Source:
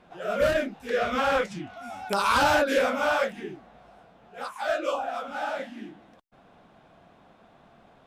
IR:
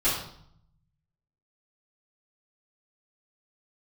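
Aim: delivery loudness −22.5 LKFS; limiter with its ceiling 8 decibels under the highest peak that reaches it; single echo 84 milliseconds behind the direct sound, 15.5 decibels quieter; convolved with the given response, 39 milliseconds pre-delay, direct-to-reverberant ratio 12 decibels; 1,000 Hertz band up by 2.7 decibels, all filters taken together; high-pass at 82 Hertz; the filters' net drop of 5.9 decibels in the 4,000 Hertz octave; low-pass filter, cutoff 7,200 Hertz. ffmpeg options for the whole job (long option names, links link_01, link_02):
-filter_complex "[0:a]highpass=82,lowpass=7200,equalizer=frequency=1000:width_type=o:gain=4,equalizer=frequency=4000:width_type=o:gain=-8,alimiter=limit=-16.5dB:level=0:latency=1,aecho=1:1:84:0.168,asplit=2[link_01][link_02];[1:a]atrim=start_sample=2205,adelay=39[link_03];[link_02][link_03]afir=irnorm=-1:irlink=0,volume=-24dB[link_04];[link_01][link_04]amix=inputs=2:normalize=0,volume=5dB"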